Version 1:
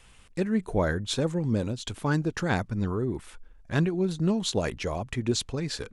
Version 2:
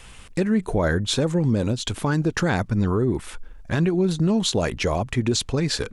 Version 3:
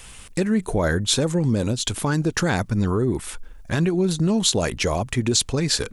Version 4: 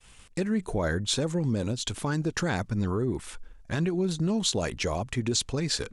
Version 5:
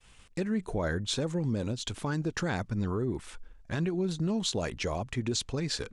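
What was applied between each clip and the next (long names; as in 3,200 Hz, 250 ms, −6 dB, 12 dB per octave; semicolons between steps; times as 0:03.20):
in parallel at −2.5 dB: downward compressor, threshold −36 dBFS, peak gain reduction 15 dB; on the sum: brickwall limiter −18.5 dBFS, peak gain reduction 7.5 dB; level +6 dB
high-shelf EQ 5,900 Hz +11 dB
downward expander −37 dBFS; low-pass filter 8,900 Hz 12 dB per octave; level −6.5 dB
high-shelf EQ 10,000 Hz −10.5 dB; level −3 dB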